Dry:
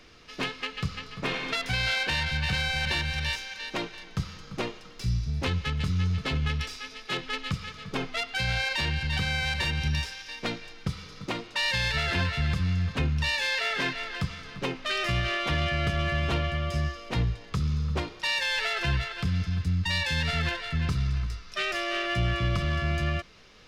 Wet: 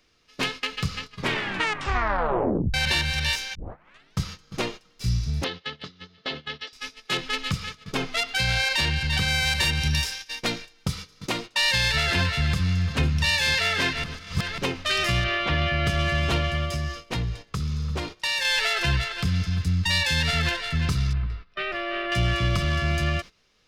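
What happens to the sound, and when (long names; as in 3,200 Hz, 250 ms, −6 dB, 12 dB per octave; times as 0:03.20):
0:01.11: tape stop 1.63 s
0:03.55: tape start 0.60 s
0:05.44–0:06.73: loudspeaker in its box 360–4,300 Hz, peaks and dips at 980 Hz −6 dB, 1,400 Hz −5 dB, 2,400 Hz −9 dB
0:09.28–0:11.46: high-shelf EQ 7,100 Hz +5.5 dB
0:12.40–0:13.04: delay throw 500 ms, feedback 75%, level −13 dB
0:14.04–0:14.58: reverse
0:15.24–0:15.86: low-pass filter 3,400 Hz
0:16.65–0:18.45: downward compressor 2.5 to 1, threshold −28 dBFS
0:21.13–0:22.12: high-frequency loss of the air 420 metres
whole clip: noise gate −39 dBFS, range −16 dB; high-shelf EQ 5,000 Hz +9 dB; level +3 dB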